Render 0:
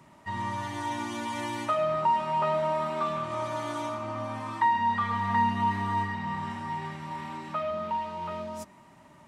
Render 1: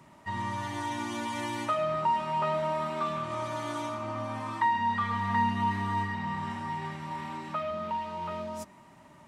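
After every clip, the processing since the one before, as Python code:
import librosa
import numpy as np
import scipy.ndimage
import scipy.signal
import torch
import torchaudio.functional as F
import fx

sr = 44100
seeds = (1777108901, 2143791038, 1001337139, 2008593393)

y = fx.dynamic_eq(x, sr, hz=710.0, q=0.89, threshold_db=-34.0, ratio=4.0, max_db=-3)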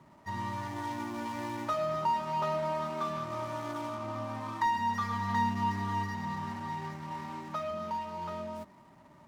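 y = scipy.signal.medfilt(x, 15)
y = y * 10.0 ** (-2.0 / 20.0)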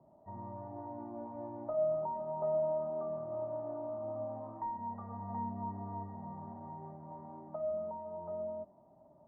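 y = fx.ladder_lowpass(x, sr, hz=750.0, resonance_pct=65)
y = y * 10.0 ** (2.5 / 20.0)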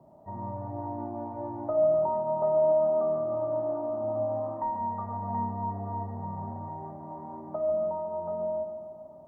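y = fx.echo_wet_lowpass(x, sr, ms=144, feedback_pct=60, hz=1400.0, wet_db=-6.5)
y = y * 10.0 ** (7.5 / 20.0)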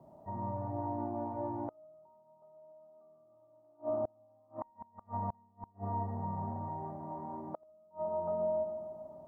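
y = fx.gate_flip(x, sr, shuts_db=-24.0, range_db=-33)
y = y * 10.0 ** (-1.5 / 20.0)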